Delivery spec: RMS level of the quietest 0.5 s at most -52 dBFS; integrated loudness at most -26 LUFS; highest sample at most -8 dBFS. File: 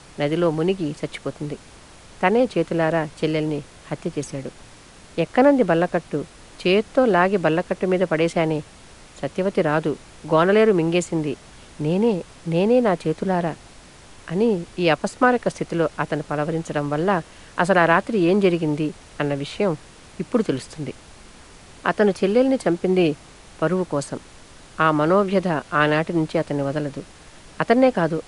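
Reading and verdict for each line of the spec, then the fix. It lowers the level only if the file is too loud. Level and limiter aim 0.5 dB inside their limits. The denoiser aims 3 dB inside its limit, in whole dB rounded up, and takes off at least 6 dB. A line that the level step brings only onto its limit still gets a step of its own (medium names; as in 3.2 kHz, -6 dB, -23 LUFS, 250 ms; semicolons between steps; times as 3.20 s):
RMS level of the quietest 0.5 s -46 dBFS: fail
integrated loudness -21.0 LUFS: fail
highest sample -4.5 dBFS: fail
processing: noise reduction 6 dB, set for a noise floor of -46 dBFS; trim -5.5 dB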